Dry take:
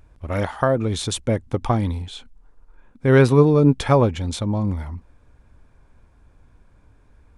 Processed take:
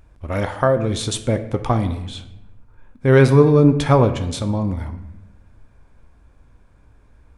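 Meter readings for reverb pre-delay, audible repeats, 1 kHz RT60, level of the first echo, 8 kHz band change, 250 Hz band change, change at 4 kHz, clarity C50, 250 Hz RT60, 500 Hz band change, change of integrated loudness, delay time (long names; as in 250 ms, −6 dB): 15 ms, no echo audible, 0.90 s, no echo audible, +1.5 dB, +1.5 dB, +1.5 dB, 11.0 dB, 1.3 s, +2.0 dB, +2.0 dB, no echo audible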